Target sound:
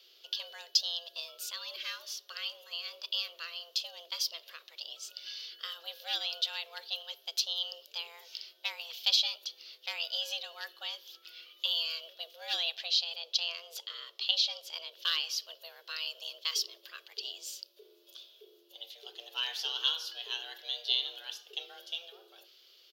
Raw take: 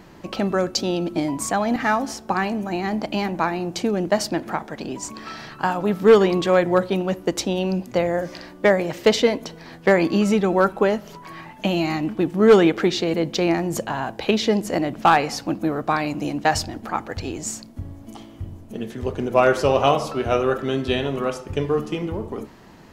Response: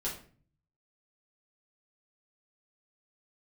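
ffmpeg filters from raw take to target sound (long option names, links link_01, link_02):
-filter_complex "[0:a]asettb=1/sr,asplit=3[link_01][link_02][link_03];[link_01]atrim=end=12.754[link_04];[link_02]atrim=start=12.75:end=14.92,asetpts=PTS-STARTPTS,afade=type=in:duration=0.004:curve=qsin,afade=type=out:start_time=2.166:duration=0.004:curve=qsin,highshelf=frequency=11000:gain=-11[link_05];[link_03]atrim=start=14.916[link_06];[link_04][link_05]acrossfade=duration=0.004:curve1=hsin:curve2=qsin[link_07];[link_07][link_06]acrossfade=duration=0.004:curve1=qsin:curve2=hsin,afreqshift=340,firequalizer=gain_entry='entry(130,0);entry(530,-23);entry(850,-28);entry(1500,-14);entry(2100,-14);entry(3000,10);entry(4600,10);entry(7900,-11);entry(14000,9)':delay=0.05:min_phase=1,volume=-8.5dB"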